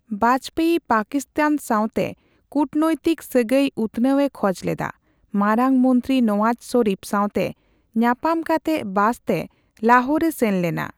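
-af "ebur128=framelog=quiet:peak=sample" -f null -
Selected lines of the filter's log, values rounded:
Integrated loudness:
  I:         -20.8 LUFS
  Threshold: -30.9 LUFS
Loudness range:
  LRA:         1.7 LU
  Threshold: -41.0 LUFS
  LRA low:   -21.9 LUFS
  LRA high:  -20.2 LUFS
Sample peak:
  Peak:       -3.0 dBFS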